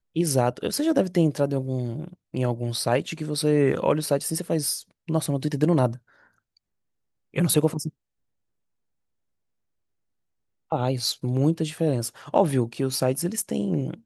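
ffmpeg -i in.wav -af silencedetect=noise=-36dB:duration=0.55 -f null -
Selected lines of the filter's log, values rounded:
silence_start: 5.96
silence_end: 7.34 | silence_duration: 1.38
silence_start: 7.89
silence_end: 10.72 | silence_duration: 2.83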